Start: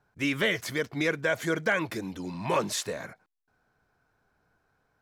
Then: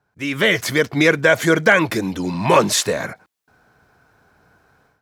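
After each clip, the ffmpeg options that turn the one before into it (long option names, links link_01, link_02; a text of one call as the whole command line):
ffmpeg -i in.wav -af "highpass=50,dynaudnorm=framelen=270:gausssize=3:maxgain=14.5dB,volume=1dB" out.wav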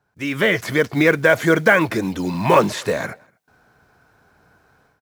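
ffmpeg -i in.wav -filter_complex "[0:a]asplit=2[link_01][link_02];[link_02]adelay=239.1,volume=-30dB,highshelf=frequency=4000:gain=-5.38[link_03];[link_01][link_03]amix=inputs=2:normalize=0,acrossover=split=2600[link_04][link_05];[link_05]acompressor=threshold=-32dB:ratio=4:attack=1:release=60[link_06];[link_04][link_06]amix=inputs=2:normalize=0,acrusher=bits=7:mode=log:mix=0:aa=0.000001" out.wav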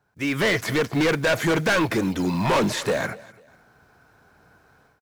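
ffmpeg -i in.wav -af "volume=17.5dB,asoftclip=hard,volume=-17.5dB,aecho=1:1:248|496:0.0841|0.0278" out.wav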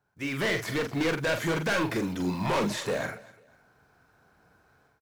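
ffmpeg -i in.wav -filter_complex "[0:a]asplit=2[link_01][link_02];[link_02]adelay=44,volume=-6.5dB[link_03];[link_01][link_03]amix=inputs=2:normalize=0,volume=-7dB" out.wav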